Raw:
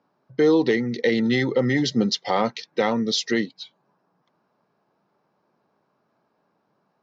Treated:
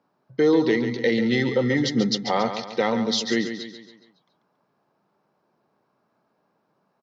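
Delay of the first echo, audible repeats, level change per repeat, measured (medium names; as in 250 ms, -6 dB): 139 ms, 4, -6.5 dB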